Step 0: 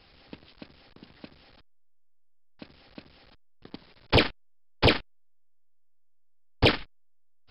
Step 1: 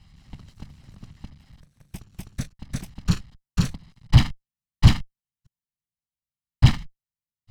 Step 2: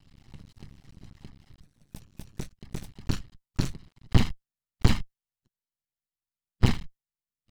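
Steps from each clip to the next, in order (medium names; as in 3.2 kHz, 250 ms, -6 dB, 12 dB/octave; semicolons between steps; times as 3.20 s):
comb filter that takes the minimum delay 1 ms; ever faster or slower copies 160 ms, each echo +6 st, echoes 3, each echo -6 dB; resonant low shelf 250 Hz +13.5 dB, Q 1.5; trim -3.5 dB
coarse spectral quantiser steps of 15 dB; half-wave rectifier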